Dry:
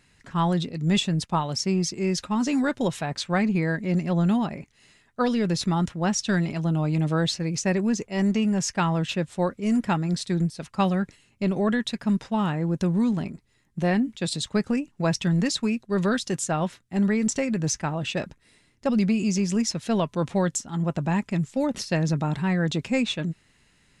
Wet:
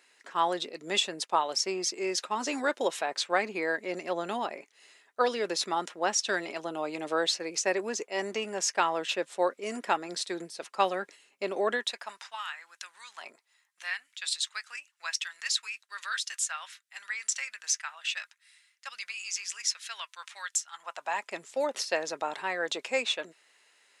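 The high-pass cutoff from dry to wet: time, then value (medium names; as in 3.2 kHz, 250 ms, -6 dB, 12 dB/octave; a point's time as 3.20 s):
high-pass 24 dB/octave
11.74 s 390 Hz
12.45 s 1.4 kHz
13.13 s 1.4 kHz
13.30 s 520 Hz
13.84 s 1.4 kHz
20.62 s 1.4 kHz
21.34 s 460 Hz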